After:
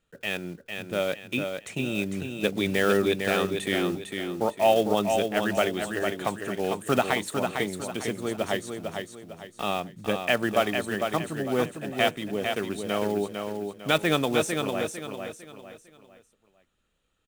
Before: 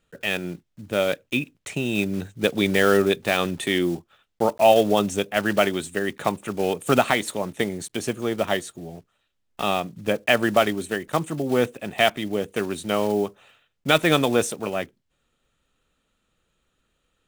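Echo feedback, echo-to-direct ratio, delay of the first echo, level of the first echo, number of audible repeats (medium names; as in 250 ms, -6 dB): 35%, -5.0 dB, 452 ms, -5.5 dB, 4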